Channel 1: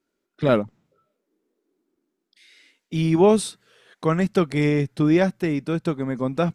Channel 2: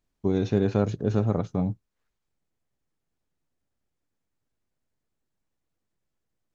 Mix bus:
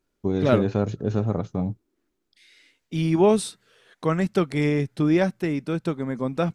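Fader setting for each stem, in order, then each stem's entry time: -2.0 dB, 0.0 dB; 0.00 s, 0.00 s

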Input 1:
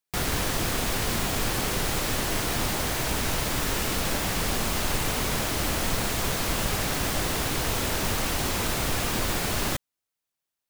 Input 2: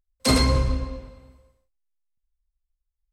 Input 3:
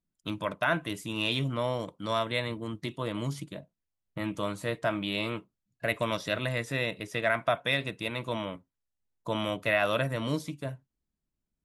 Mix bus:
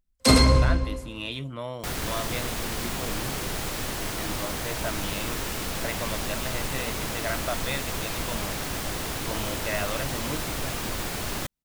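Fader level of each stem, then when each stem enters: -4.0 dB, +2.0 dB, -4.5 dB; 1.70 s, 0.00 s, 0.00 s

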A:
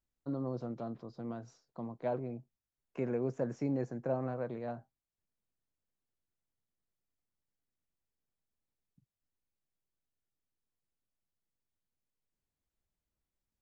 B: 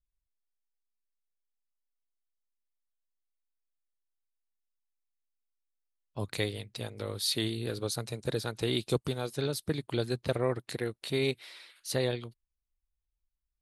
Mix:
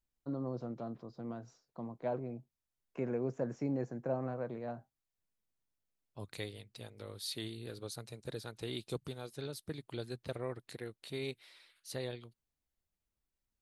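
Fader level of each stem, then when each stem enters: -1.5 dB, -10.5 dB; 0.00 s, 0.00 s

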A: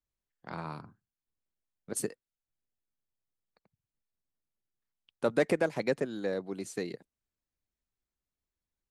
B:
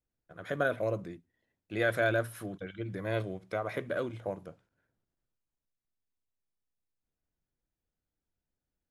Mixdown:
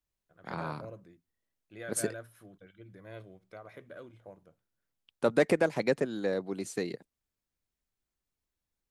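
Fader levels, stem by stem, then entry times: +2.0 dB, -14.0 dB; 0.00 s, 0.00 s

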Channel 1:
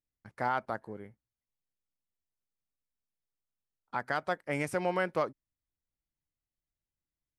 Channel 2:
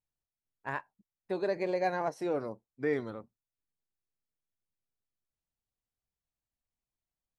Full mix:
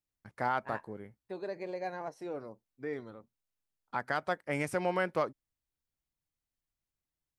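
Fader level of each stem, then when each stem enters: -0.5 dB, -7.5 dB; 0.00 s, 0.00 s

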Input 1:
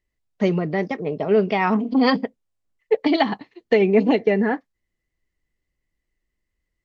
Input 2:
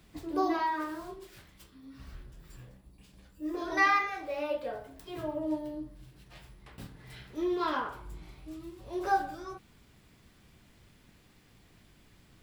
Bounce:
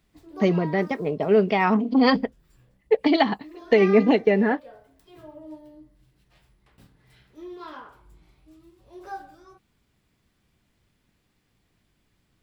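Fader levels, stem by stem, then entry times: -0.5 dB, -9.0 dB; 0.00 s, 0.00 s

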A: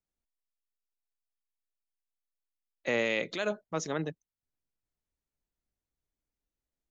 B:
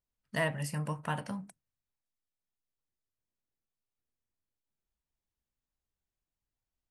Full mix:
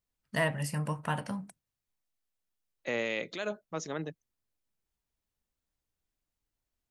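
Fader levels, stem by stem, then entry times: -3.5 dB, +2.0 dB; 0.00 s, 0.00 s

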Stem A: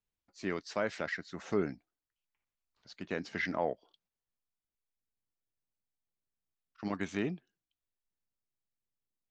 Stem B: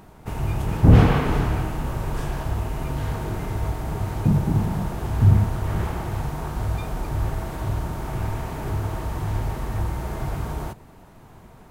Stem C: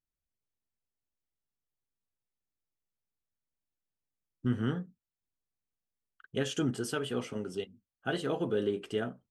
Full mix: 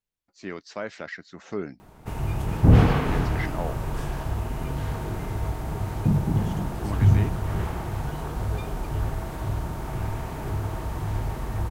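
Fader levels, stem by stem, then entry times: 0.0 dB, -2.5 dB, -11.5 dB; 0.00 s, 1.80 s, 0.00 s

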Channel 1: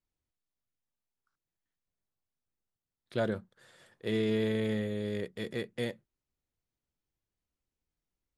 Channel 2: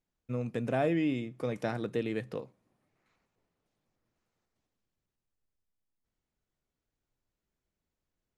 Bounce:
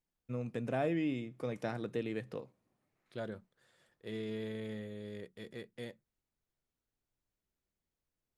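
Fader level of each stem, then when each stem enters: -10.5 dB, -4.5 dB; 0.00 s, 0.00 s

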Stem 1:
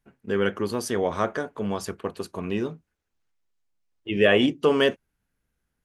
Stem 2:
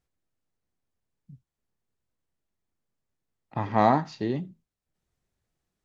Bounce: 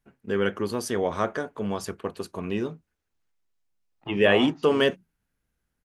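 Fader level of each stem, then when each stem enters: -1.0 dB, -11.5 dB; 0.00 s, 0.50 s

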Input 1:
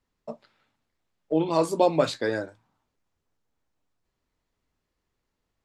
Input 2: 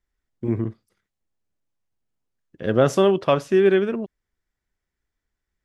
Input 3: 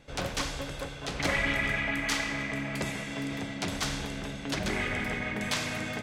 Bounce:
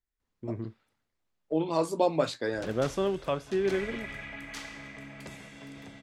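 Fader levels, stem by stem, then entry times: -4.5 dB, -11.5 dB, -11.5 dB; 0.20 s, 0.00 s, 2.45 s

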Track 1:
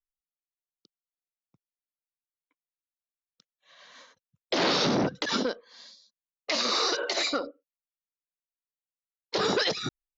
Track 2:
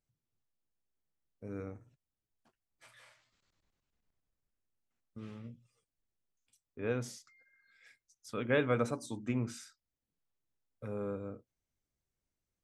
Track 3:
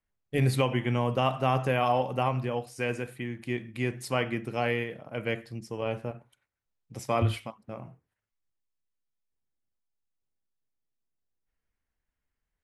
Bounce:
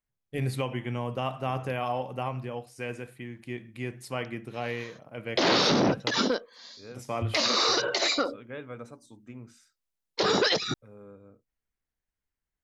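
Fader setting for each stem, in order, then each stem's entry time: +2.0 dB, -10.5 dB, -5.0 dB; 0.85 s, 0.00 s, 0.00 s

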